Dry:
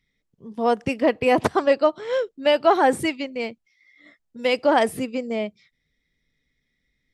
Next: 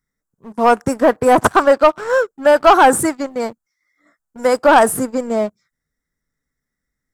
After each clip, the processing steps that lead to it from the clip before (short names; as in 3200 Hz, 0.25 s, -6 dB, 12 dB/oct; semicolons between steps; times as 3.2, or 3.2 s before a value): EQ curve 470 Hz 0 dB, 1500 Hz +11 dB, 2700 Hz -21 dB, 7300 Hz +10 dB; sample leveller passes 2; gain -1 dB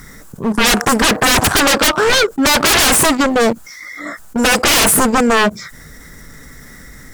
sine folder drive 19 dB, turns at -1.5 dBFS; fast leveller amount 50%; gain -7 dB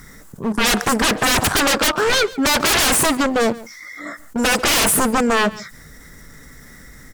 outdoor echo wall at 24 m, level -19 dB; gain -4.5 dB